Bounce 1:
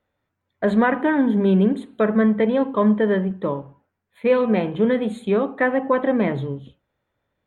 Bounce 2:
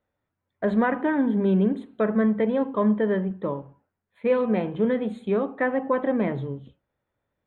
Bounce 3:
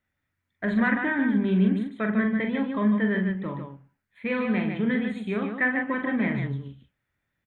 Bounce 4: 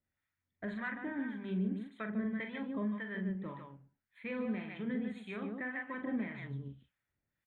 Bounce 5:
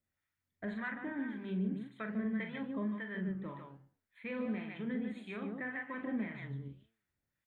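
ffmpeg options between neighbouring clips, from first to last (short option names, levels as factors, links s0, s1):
-af "lowpass=f=2500:p=1,volume=0.631"
-af "equalizer=f=500:t=o:w=1:g=-11,equalizer=f=1000:t=o:w=1:g=-5,equalizer=f=2000:t=o:w=1:g=8,aecho=1:1:43.73|148.7:0.501|0.501"
-filter_complex "[0:a]alimiter=limit=0.0944:level=0:latency=1:release=424,acrossover=split=760[s0][s1];[s0]aeval=exprs='val(0)*(1-0.7/2+0.7/2*cos(2*PI*1.8*n/s))':c=same[s2];[s1]aeval=exprs='val(0)*(1-0.7/2-0.7/2*cos(2*PI*1.8*n/s))':c=same[s3];[s2][s3]amix=inputs=2:normalize=0,volume=0.531"
-af "flanger=delay=8.8:depth=6.7:regen=89:speed=1.3:shape=sinusoidal,volume=1.58"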